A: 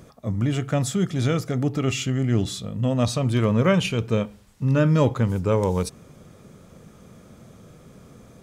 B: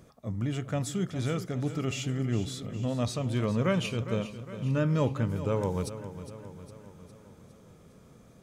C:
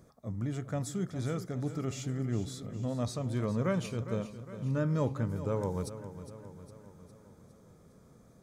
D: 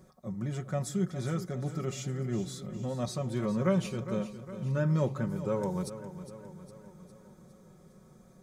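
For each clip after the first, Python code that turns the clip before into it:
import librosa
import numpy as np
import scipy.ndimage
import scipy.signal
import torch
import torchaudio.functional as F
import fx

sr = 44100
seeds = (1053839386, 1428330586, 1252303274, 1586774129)

y1 = fx.echo_feedback(x, sr, ms=408, feedback_pct=55, wet_db=-12.5)
y1 = F.gain(torch.from_numpy(y1), -8.0).numpy()
y2 = fx.peak_eq(y1, sr, hz=2800.0, db=-11.0, octaves=0.56)
y2 = F.gain(torch.from_numpy(y2), -3.5).numpy()
y3 = y2 + 0.71 * np.pad(y2, (int(5.4 * sr / 1000.0), 0))[:len(y2)]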